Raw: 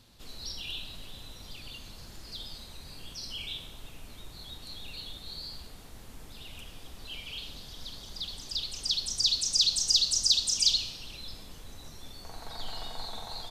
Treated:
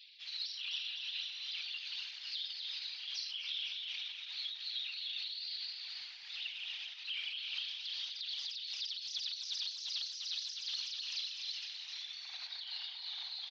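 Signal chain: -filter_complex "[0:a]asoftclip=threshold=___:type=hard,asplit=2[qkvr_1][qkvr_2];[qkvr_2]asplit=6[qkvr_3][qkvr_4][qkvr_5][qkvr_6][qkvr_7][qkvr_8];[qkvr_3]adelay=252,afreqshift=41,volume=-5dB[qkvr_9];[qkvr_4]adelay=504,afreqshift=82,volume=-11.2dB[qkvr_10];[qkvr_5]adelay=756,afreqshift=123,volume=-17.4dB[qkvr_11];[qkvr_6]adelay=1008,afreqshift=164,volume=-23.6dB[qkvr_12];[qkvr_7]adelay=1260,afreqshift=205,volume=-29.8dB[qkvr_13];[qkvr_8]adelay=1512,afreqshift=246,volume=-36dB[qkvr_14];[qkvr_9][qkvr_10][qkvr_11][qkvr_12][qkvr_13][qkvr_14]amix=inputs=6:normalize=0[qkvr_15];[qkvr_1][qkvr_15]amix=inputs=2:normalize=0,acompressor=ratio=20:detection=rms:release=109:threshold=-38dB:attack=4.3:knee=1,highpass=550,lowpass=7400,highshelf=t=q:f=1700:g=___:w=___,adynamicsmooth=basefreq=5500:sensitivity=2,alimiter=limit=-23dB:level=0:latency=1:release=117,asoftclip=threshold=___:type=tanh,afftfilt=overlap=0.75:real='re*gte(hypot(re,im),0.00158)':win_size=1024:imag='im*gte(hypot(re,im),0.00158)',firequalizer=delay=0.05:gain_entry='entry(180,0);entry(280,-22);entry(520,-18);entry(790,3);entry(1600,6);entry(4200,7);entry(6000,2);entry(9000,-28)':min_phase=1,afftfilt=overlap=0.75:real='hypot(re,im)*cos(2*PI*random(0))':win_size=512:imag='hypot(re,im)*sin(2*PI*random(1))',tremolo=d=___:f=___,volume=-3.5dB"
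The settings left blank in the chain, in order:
-23dB, 13, 1.5, -31.5dB, 0.35, 2.5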